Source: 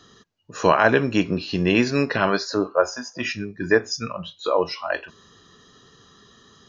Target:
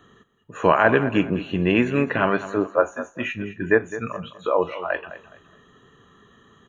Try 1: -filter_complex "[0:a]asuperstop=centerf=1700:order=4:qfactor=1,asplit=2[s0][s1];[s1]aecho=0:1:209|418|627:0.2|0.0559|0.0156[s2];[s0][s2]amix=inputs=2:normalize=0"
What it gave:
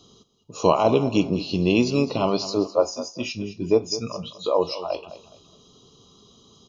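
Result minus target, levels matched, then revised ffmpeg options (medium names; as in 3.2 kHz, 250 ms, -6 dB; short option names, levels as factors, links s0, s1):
2 kHz band -10.5 dB
-filter_complex "[0:a]asuperstop=centerf=5000:order=4:qfactor=1,asplit=2[s0][s1];[s1]aecho=0:1:209|418|627:0.2|0.0559|0.0156[s2];[s0][s2]amix=inputs=2:normalize=0"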